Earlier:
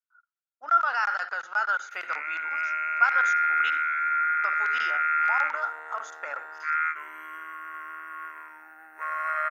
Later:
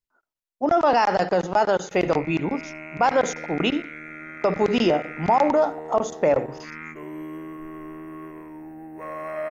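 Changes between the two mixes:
speech +10.5 dB; master: remove resonant high-pass 1400 Hz, resonance Q 11

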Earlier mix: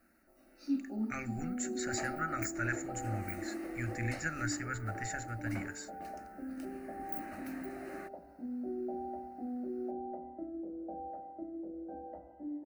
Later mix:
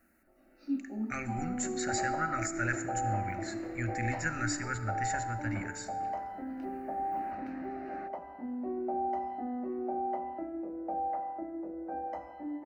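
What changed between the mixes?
first sound: add air absorption 220 m; second sound: remove running mean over 41 samples; reverb: on, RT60 1.9 s

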